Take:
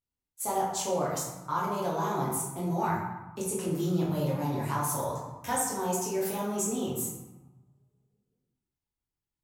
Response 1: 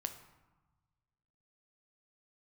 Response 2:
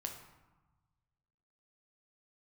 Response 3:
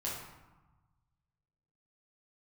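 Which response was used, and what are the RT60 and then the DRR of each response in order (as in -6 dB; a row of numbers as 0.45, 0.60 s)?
3; 1.2, 1.2, 1.1 s; 7.0, 2.5, -6.5 dB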